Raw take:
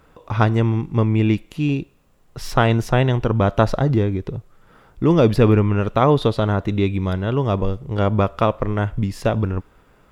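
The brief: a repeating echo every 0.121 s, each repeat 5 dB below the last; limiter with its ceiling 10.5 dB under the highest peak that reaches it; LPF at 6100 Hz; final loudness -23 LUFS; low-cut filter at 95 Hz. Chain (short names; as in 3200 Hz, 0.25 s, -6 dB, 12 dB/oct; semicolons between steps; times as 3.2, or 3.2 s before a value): HPF 95 Hz; LPF 6100 Hz; limiter -11.5 dBFS; feedback echo 0.121 s, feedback 56%, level -5 dB; gain -1 dB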